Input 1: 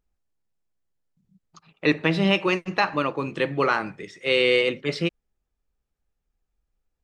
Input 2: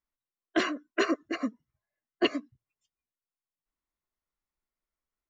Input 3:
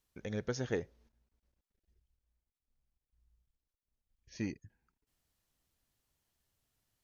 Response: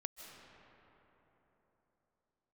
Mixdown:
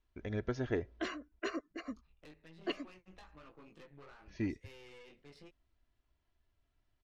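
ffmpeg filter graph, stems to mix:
-filter_complex "[0:a]flanger=delay=18:depth=3.5:speed=0.93,acompressor=threshold=-34dB:ratio=5,aeval=exprs='(tanh(63.1*val(0)+0.75)-tanh(0.75))/63.1':c=same,adelay=400,volume=-15dB[a];[1:a]adelay=450,volume=-12dB[b];[2:a]lowpass=2.9k,lowshelf=f=65:g=10,aecho=1:1:3:0.48,volume=0dB[c];[a][b][c]amix=inputs=3:normalize=0"

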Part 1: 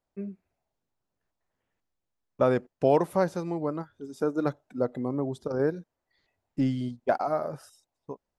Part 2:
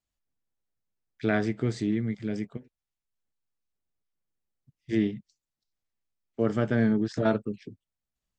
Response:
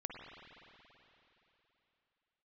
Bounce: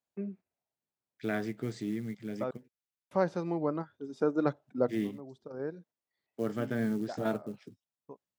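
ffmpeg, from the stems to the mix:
-filter_complex "[0:a]agate=range=-10dB:threshold=-49dB:ratio=16:detection=peak,lowpass=4.7k,volume=-1dB,asplit=3[a][b][c];[a]atrim=end=2.51,asetpts=PTS-STARTPTS,afade=t=out:st=2.506:d=0.004:c=hsin[d];[b]atrim=start=2.51:end=3.11,asetpts=PTS-STARTPTS,volume=0[e];[c]atrim=start=3.11,asetpts=PTS-STARTPTS,afade=t=in:d=0.004:c=hsin[f];[d][e][f]concat=n=3:v=0:a=1[g];[1:a]acrusher=bits=7:mode=log:mix=0:aa=0.000001,volume=-7dB,asplit=2[h][i];[i]apad=whole_len=369856[j];[g][j]sidechaincompress=threshold=-43dB:ratio=16:attack=24:release=1250[k];[k][h]amix=inputs=2:normalize=0,highpass=120"

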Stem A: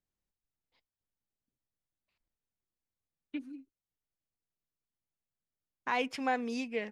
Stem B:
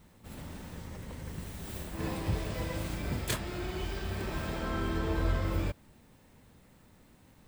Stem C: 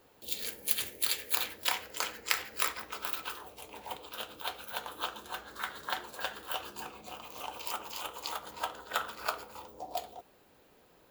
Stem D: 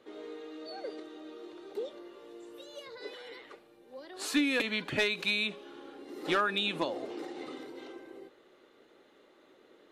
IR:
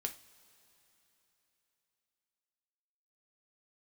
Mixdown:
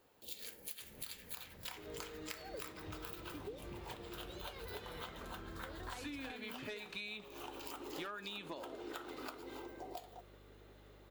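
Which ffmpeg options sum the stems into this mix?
-filter_complex "[0:a]asoftclip=type=tanh:threshold=-29.5dB,volume=-8.5dB,asplit=2[a][b];[1:a]acompressor=threshold=-35dB:ratio=2,lowpass=5.2k,adelay=600,volume=-12.5dB[c];[2:a]volume=-7dB[d];[3:a]aeval=exprs='val(0)+0.00112*(sin(2*PI*50*n/s)+sin(2*PI*2*50*n/s)/2+sin(2*PI*3*50*n/s)/3+sin(2*PI*4*50*n/s)/4+sin(2*PI*5*50*n/s)/5)':c=same,adelay=1700,volume=-5.5dB,asplit=2[e][f];[f]volume=-5.5dB[g];[b]apad=whole_len=512109[h];[e][h]sidechaincompress=threshold=-55dB:ratio=8:attack=16:release=219[i];[4:a]atrim=start_sample=2205[j];[g][j]afir=irnorm=-1:irlink=0[k];[a][c][d][i][k]amix=inputs=5:normalize=0,acompressor=threshold=-43dB:ratio=6"

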